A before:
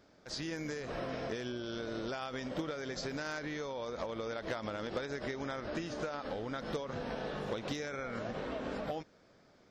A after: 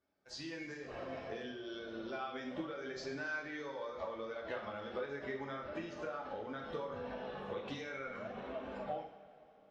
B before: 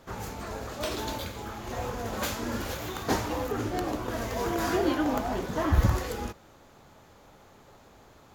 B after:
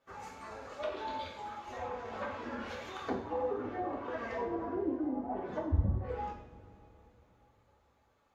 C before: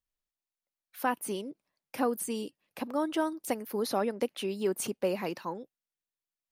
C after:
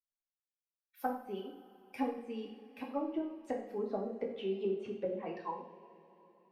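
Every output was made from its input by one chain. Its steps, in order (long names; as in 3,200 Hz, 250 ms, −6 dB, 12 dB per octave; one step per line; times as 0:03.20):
spectral dynamics exaggerated over time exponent 1.5
bass and treble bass −7 dB, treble −6 dB
treble cut that deepens with the level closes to 320 Hz, closed at −28.5 dBFS
coupled-rooms reverb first 0.58 s, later 3.7 s, from −18 dB, DRR −1.5 dB
level −2.5 dB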